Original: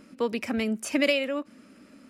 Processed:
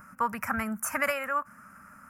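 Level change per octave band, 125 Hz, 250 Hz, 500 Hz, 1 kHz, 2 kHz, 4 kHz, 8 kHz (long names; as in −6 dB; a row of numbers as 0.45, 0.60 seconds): can't be measured, −8.5 dB, −8.0 dB, +10.0 dB, 0.0 dB, −13.5 dB, +2.5 dB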